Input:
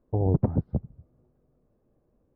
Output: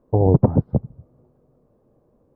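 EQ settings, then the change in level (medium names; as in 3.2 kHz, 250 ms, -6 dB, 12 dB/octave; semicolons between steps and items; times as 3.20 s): graphic EQ 125/250/500/1000 Hz +6/+4/+7/+8 dB; +2.0 dB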